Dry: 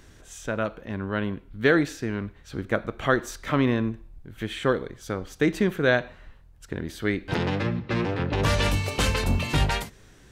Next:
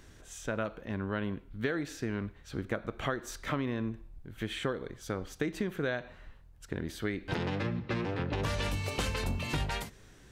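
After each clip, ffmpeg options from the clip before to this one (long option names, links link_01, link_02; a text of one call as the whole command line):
ffmpeg -i in.wav -af "acompressor=threshold=-25dB:ratio=10,volume=-3.5dB" out.wav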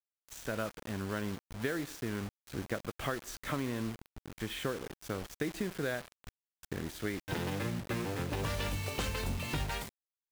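ffmpeg -i in.wav -af "acrusher=bits=6:mix=0:aa=0.000001,volume=-2.5dB" out.wav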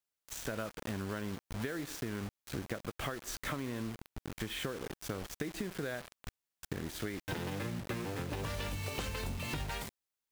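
ffmpeg -i in.wav -af "acompressor=threshold=-40dB:ratio=6,volume=5dB" out.wav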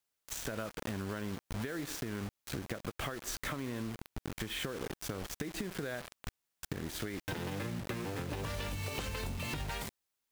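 ffmpeg -i in.wav -af "acompressor=threshold=-39dB:ratio=6,volume=4.5dB" out.wav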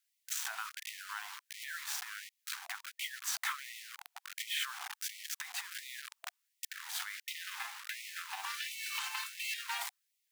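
ffmpeg -i in.wav -af "afftfilt=real='re*gte(b*sr/1024,680*pow(1900/680,0.5+0.5*sin(2*PI*1.4*pts/sr)))':imag='im*gte(b*sr/1024,680*pow(1900/680,0.5+0.5*sin(2*PI*1.4*pts/sr)))':win_size=1024:overlap=0.75,volume=4dB" out.wav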